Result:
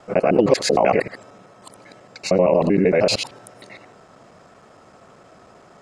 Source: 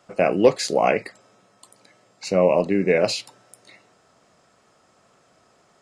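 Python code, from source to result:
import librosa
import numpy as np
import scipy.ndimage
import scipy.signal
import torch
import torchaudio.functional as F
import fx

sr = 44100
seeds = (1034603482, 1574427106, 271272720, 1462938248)

p1 = fx.local_reverse(x, sr, ms=77.0)
p2 = fx.high_shelf(p1, sr, hz=2600.0, db=-10.5)
p3 = fx.over_compress(p2, sr, threshold_db=-28.0, ratio=-1.0)
y = p2 + F.gain(torch.from_numpy(p3), 2.5).numpy()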